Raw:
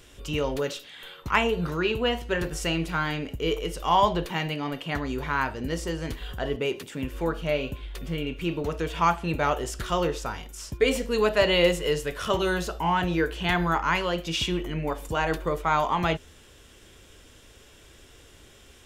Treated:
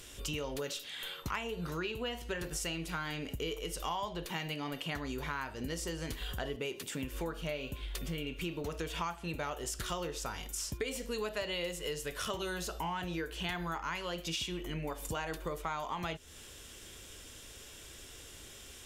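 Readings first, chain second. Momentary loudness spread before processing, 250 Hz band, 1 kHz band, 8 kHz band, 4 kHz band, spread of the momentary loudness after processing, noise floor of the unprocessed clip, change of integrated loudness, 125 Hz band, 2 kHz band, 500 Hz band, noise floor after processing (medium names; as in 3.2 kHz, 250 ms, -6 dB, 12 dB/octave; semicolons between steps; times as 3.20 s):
9 LU, -11.0 dB, -13.5 dB, -1.5 dB, -8.0 dB, 13 LU, -53 dBFS, -11.5 dB, -10.5 dB, -11.0 dB, -13.0 dB, -51 dBFS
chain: peaking EQ 12 kHz +9 dB 2.6 oct; compression 6:1, threshold -33 dBFS, peak gain reduction 17 dB; trim -2 dB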